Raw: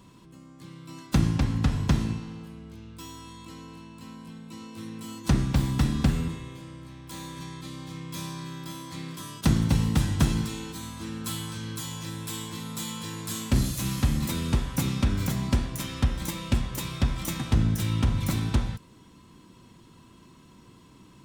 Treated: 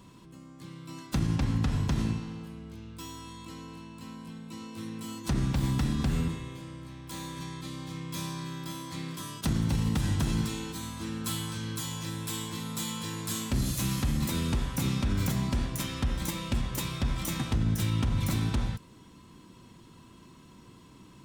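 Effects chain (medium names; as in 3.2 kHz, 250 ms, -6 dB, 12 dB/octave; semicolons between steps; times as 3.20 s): peak limiter -19 dBFS, peak gain reduction 9 dB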